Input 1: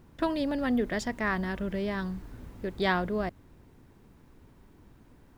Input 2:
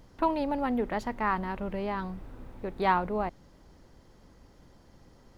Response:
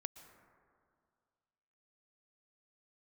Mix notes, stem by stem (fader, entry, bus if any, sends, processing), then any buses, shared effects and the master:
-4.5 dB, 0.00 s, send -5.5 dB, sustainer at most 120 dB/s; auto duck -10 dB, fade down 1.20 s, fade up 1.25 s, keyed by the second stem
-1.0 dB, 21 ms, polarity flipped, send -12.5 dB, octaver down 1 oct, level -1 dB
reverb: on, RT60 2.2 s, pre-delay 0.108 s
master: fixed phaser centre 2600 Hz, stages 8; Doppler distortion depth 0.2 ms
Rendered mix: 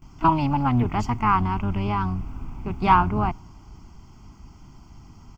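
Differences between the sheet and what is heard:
stem 2 -1.0 dB -> +9.5 dB; reverb return -9.5 dB

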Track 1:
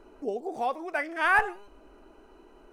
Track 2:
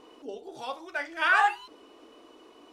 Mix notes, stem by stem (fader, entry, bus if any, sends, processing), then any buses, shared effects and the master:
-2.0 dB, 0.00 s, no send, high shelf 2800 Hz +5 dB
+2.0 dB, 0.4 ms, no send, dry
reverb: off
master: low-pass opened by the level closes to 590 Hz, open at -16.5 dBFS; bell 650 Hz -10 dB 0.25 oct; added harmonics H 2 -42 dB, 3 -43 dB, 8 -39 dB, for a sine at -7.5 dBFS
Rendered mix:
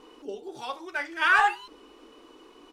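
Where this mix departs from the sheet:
stem 1 -2.0 dB -> -12.0 dB; master: missing low-pass opened by the level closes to 590 Hz, open at -16.5 dBFS

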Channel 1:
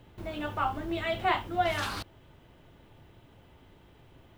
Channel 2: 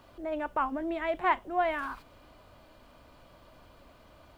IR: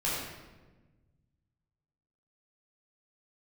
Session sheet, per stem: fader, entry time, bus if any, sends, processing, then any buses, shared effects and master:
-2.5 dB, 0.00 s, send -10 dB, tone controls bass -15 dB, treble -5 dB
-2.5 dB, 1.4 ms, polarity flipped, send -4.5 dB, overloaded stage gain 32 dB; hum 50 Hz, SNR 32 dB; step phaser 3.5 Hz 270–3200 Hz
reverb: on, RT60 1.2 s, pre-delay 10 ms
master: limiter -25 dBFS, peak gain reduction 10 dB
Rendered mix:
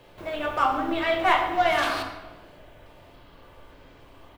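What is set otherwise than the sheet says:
stem 1 -2.5 dB -> +4.5 dB; master: missing limiter -25 dBFS, peak gain reduction 10 dB

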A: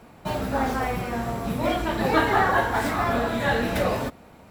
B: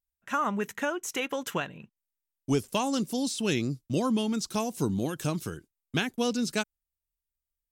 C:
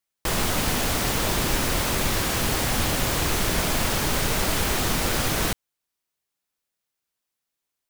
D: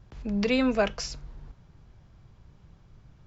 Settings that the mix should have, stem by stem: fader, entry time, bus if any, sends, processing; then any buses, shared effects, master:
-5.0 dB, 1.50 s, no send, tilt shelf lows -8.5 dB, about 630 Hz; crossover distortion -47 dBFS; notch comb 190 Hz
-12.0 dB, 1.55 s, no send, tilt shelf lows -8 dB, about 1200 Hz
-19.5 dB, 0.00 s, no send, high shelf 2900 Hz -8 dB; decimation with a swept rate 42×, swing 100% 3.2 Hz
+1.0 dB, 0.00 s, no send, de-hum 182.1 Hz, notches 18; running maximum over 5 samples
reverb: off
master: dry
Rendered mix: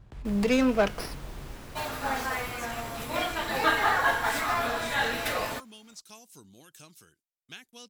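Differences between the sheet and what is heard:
stem B -12.0 dB -> -18.5 dB; stem C: missing decimation with a swept rate 42×, swing 100% 3.2 Hz

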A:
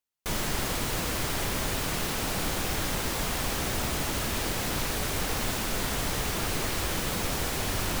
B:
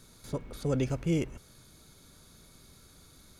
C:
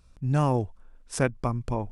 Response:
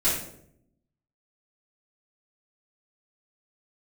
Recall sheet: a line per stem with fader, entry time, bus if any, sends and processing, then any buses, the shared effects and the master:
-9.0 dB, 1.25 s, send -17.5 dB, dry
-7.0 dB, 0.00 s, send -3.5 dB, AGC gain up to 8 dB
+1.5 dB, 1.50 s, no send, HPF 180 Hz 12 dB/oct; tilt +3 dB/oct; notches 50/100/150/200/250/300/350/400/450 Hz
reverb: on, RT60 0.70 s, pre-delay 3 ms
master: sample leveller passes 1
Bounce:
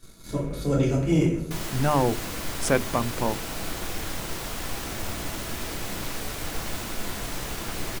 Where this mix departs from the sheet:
stem B: missing AGC gain up to 8 dB; stem C: missing tilt +3 dB/oct

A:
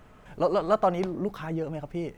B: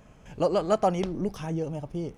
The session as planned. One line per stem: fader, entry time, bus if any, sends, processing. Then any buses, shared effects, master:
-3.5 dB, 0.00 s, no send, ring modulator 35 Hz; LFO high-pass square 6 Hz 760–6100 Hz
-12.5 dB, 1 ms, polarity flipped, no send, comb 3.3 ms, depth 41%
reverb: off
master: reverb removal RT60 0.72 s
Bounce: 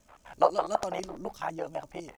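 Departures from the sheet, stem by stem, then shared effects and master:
stem A -3.5 dB -> +3.5 dB; master: missing reverb removal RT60 0.72 s

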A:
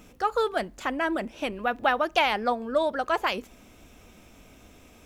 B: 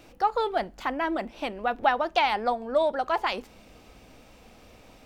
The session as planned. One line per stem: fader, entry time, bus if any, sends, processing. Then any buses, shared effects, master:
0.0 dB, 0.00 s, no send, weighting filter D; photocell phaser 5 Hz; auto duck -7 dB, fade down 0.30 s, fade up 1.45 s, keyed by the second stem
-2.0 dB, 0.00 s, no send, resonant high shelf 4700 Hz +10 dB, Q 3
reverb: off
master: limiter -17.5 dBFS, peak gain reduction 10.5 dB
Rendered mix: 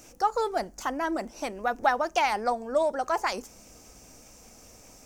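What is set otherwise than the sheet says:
stem A 0.0 dB -> -7.5 dB; master: missing limiter -17.5 dBFS, peak gain reduction 10.5 dB

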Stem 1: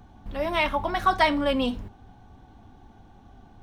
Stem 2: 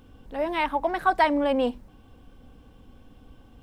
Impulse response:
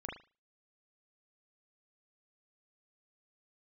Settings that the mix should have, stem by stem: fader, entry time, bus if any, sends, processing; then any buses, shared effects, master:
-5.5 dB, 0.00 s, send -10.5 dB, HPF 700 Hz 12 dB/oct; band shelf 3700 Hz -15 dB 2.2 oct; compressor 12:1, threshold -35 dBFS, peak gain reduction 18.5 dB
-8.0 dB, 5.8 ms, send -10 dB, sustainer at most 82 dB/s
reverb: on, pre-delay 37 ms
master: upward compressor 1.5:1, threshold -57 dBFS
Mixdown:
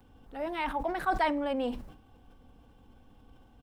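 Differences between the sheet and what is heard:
stem 1 -5.5 dB -> -12.0 dB; reverb return -8.0 dB

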